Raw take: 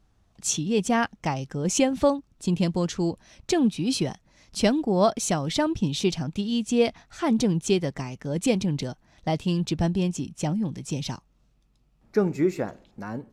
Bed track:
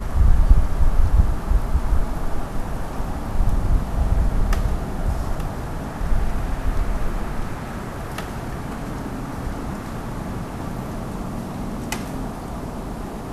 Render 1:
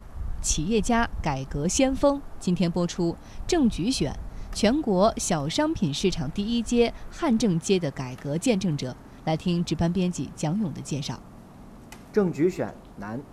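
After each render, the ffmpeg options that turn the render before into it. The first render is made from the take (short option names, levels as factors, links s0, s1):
-filter_complex "[1:a]volume=0.133[s0];[0:a][s0]amix=inputs=2:normalize=0"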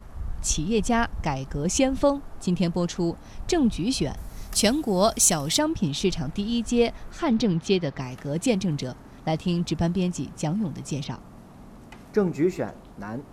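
-filter_complex "[0:a]asettb=1/sr,asplit=3[s0][s1][s2];[s0]atrim=end=4.174[s3];[s1]atrim=start=4.17:end=5.59,asetpts=PTS-STARTPTS,afade=t=in:d=0.004:c=qsin,afade=t=out:st=1.416:d=0.004:c=qsin,aemphasis=mode=production:type=75fm[s4];[s2]atrim=start=5.586[s5];[s3][s4]acrossfade=d=0.004:c1=hsin:c2=qsin[s6];[s6][s5]acrossfade=d=0.004:c1=qsin:c2=hsin,asettb=1/sr,asplit=3[s7][s8][s9];[s7]atrim=end=7.244[s10];[s8]atrim=start=7.24:end=8.02,asetpts=PTS-STARTPTS,afade=t=in:d=0.004:c=qsin,afade=t=out:st=0.776:d=0.004:c=qsin,highshelf=f=6000:t=q:w=1.5:g=-10.5[s11];[s9]atrim=start=8.016[s12];[s10][s11]acrossfade=d=0.004:c1=hsin:c2=qsin[s13];[s13][s12]acrossfade=d=0.004:c1=qsin:c2=hsin,asettb=1/sr,asplit=3[s14][s15][s16];[s14]atrim=end=11.044[s17];[s15]atrim=start=11.04:end=12.04,asetpts=PTS-STARTPTS,afade=t=in:d=0.004:c=qsin,afade=t=out:st=0.996:d=0.004:c=qsin,acrossover=split=3900[s18][s19];[s19]acompressor=threshold=0.00178:ratio=4:attack=1:release=60[s20];[s18][s20]amix=inputs=2:normalize=0[s21];[s16]atrim=start=12.036[s22];[s17][s21]acrossfade=d=0.004:c1=hsin:c2=qsin[s23];[s23][s22]acrossfade=d=0.004:c1=qsin:c2=hsin"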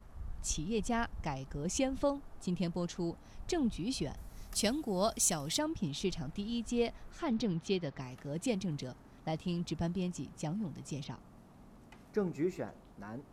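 -af "volume=0.282"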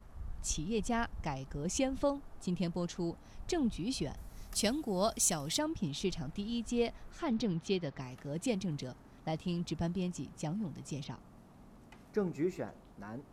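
-af anull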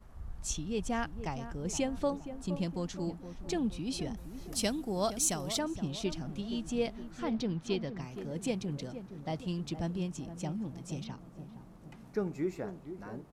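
-filter_complex "[0:a]asplit=2[s0][s1];[s1]adelay=468,lowpass=f=970:p=1,volume=0.316,asplit=2[s2][s3];[s3]adelay=468,lowpass=f=970:p=1,volume=0.55,asplit=2[s4][s5];[s5]adelay=468,lowpass=f=970:p=1,volume=0.55,asplit=2[s6][s7];[s7]adelay=468,lowpass=f=970:p=1,volume=0.55,asplit=2[s8][s9];[s9]adelay=468,lowpass=f=970:p=1,volume=0.55,asplit=2[s10][s11];[s11]adelay=468,lowpass=f=970:p=1,volume=0.55[s12];[s0][s2][s4][s6][s8][s10][s12]amix=inputs=7:normalize=0"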